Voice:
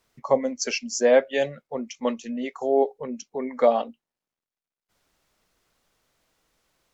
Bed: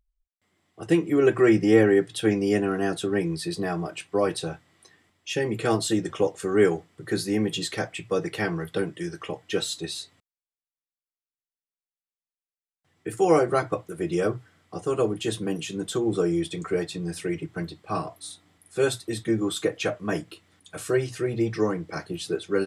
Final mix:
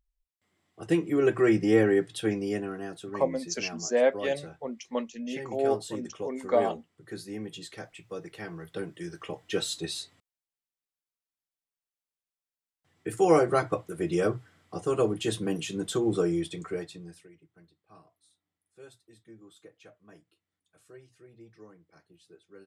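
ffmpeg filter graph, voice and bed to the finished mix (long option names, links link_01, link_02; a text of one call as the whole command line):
ffmpeg -i stem1.wav -i stem2.wav -filter_complex "[0:a]adelay=2900,volume=-5.5dB[link_01];[1:a]volume=7.5dB,afade=type=out:start_time=2.06:duration=0.84:silence=0.354813,afade=type=in:start_time=8.46:duration=1.39:silence=0.266073,afade=type=out:start_time=16.11:duration=1.18:silence=0.0530884[link_02];[link_01][link_02]amix=inputs=2:normalize=0" out.wav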